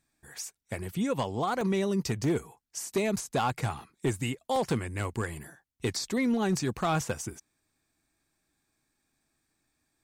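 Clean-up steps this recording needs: clip repair -21 dBFS; interpolate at 1.61/2.24/4.56, 1.3 ms

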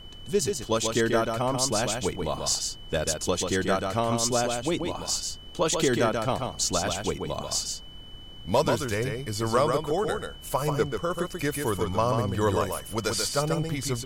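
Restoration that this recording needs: clip repair -13.5 dBFS; notch 3000 Hz, Q 30; noise print and reduce 30 dB; inverse comb 0.137 s -5 dB

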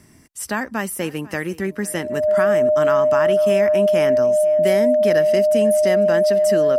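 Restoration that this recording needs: notch 610 Hz, Q 30; inverse comb 0.497 s -20.5 dB

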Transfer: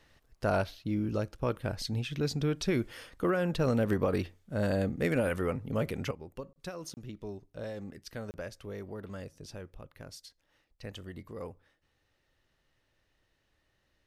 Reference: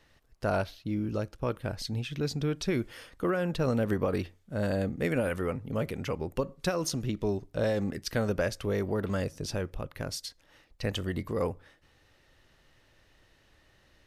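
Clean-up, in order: clip repair -18.5 dBFS; interpolate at 6.53/6.94/8.31, 29 ms; gain 0 dB, from 6.11 s +11.5 dB

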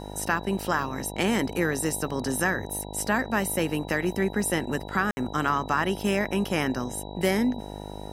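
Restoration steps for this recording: de-hum 50.9 Hz, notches 19; notch 3900 Hz, Q 30; room tone fill 5.11–5.17

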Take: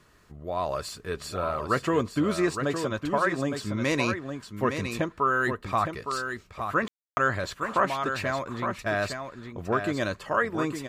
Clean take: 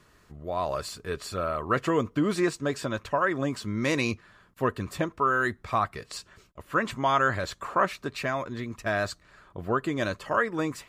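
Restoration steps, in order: room tone fill 6.88–7.17; inverse comb 0.862 s -7 dB

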